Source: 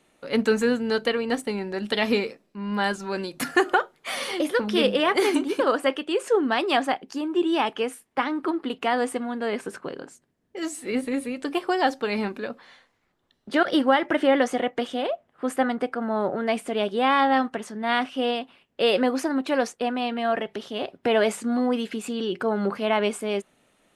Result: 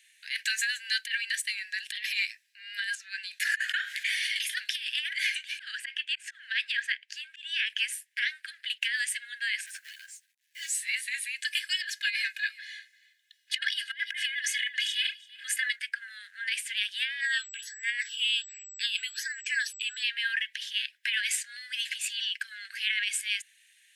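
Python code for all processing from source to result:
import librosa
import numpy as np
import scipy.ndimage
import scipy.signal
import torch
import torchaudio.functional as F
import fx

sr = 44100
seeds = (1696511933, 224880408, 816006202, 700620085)

y = fx.chain(x, sr, fx.tilt_eq(slope=-3.5),
    fx.sustainer(db_per_s=50.0), at=(2.95, 4.36))
y = fx.chain(y, sr, fx.lowpass(hz=2100.0, slope=6),
    fx.auto_swell(attack_ms=163.0),
    fx.band_squash(depth_pct=40), at=(5.13, 7.7))
y = fx.chain(y, sr, fx.overload_stage(gain_db=28.5),
    fx.quant_companded(bits=6),
    fx.ensemble(), at=(9.66, 10.69))
y = fx.chain(y, sr, fx.comb(ms=2.4, depth=0.84),
    fx.echo_single(ms=337, db=-21.5), at=(11.38, 15.76))
y = fx.phaser_stages(y, sr, stages=6, low_hz=460.0, high_hz=1100.0, hz=1.3, feedback_pct=10, at=(17.2, 20.02), fade=0.02)
y = fx.dmg_tone(y, sr, hz=7800.0, level_db=-52.0, at=(17.2, 20.02), fade=0.02)
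y = scipy.signal.sosfilt(scipy.signal.cheby1(8, 1.0, 1600.0, 'highpass', fs=sr, output='sos'), y)
y = fx.over_compress(y, sr, threshold_db=-33.0, ratio=-0.5)
y = y * 10.0 ** (5.0 / 20.0)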